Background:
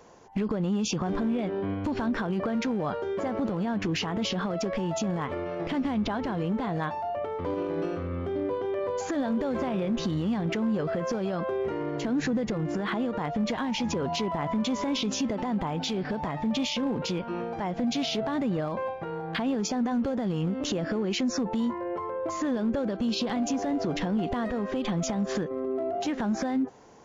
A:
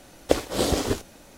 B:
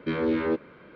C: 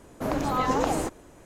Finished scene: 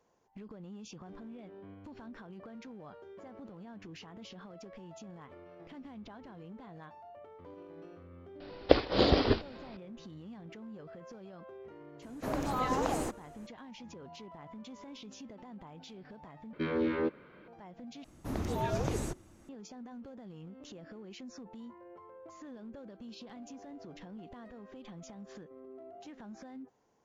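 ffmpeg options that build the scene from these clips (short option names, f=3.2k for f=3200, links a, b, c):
-filter_complex "[3:a]asplit=2[a][b];[0:a]volume=-20dB[c];[1:a]aresample=11025,aresample=44100[d];[b]afreqshift=-370[e];[c]asplit=3[f][g][h];[f]atrim=end=16.534[i];[2:a]atrim=end=0.95,asetpts=PTS-STARTPTS,volume=-5.5dB[j];[g]atrim=start=17.476:end=18.044[k];[e]atrim=end=1.45,asetpts=PTS-STARTPTS,volume=-7.5dB[l];[h]atrim=start=19.486[m];[d]atrim=end=1.37,asetpts=PTS-STARTPTS,volume=-1.5dB,afade=t=in:d=0.004:c=hsin,afade=t=out:st=1.366:d=0.004:c=hsin,adelay=8400[n];[a]atrim=end=1.45,asetpts=PTS-STARTPTS,volume=-6.5dB,afade=t=in:d=0.004:c=hsin,afade=t=out:st=1.446:d=0.004:c=hsin,adelay=12020[o];[i][j]acrossfade=d=0.004:c1=hsin:c2=hsin[p];[p][k]acrossfade=d=0.004:c1=hsin:c2=hsin[q];[q][l]acrossfade=d=0.004:c1=hsin:c2=hsin[r];[r][m]acrossfade=d=0.004:c1=hsin:c2=hsin[s];[s][n][o]amix=inputs=3:normalize=0"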